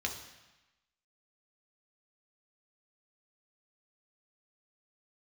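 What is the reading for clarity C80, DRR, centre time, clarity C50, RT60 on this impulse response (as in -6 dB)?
10.0 dB, 1.5 dB, 24 ms, 7.5 dB, 1.0 s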